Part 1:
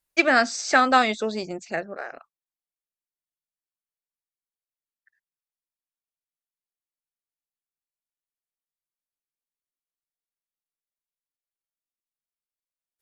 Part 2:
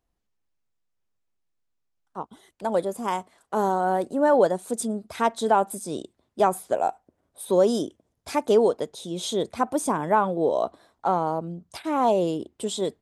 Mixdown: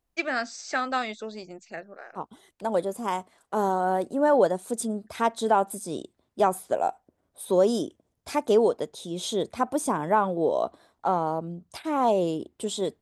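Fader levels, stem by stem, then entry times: -9.5 dB, -1.5 dB; 0.00 s, 0.00 s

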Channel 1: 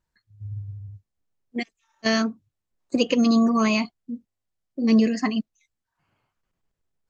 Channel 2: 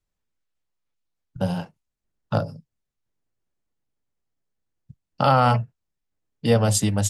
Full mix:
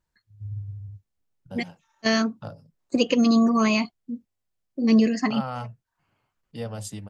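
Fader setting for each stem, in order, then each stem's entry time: 0.0 dB, -15.0 dB; 0.00 s, 0.10 s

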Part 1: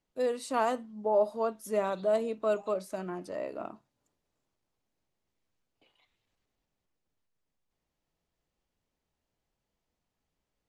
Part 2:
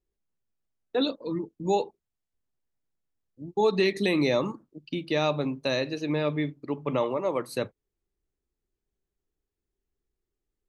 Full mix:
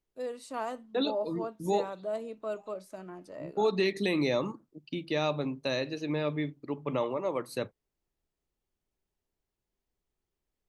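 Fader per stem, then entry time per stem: -7.0 dB, -4.0 dB; 0.00 s, 0.00 s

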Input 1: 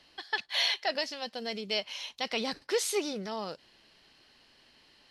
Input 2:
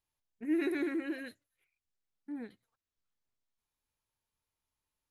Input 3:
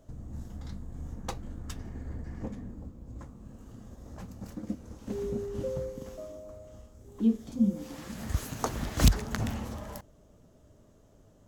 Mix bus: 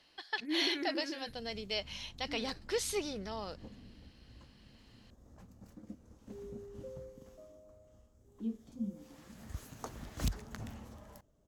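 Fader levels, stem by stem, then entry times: -5.0 dB, -5.5 dB, -13.0 dB; 0.00 s, 0.00 s, 1.20 s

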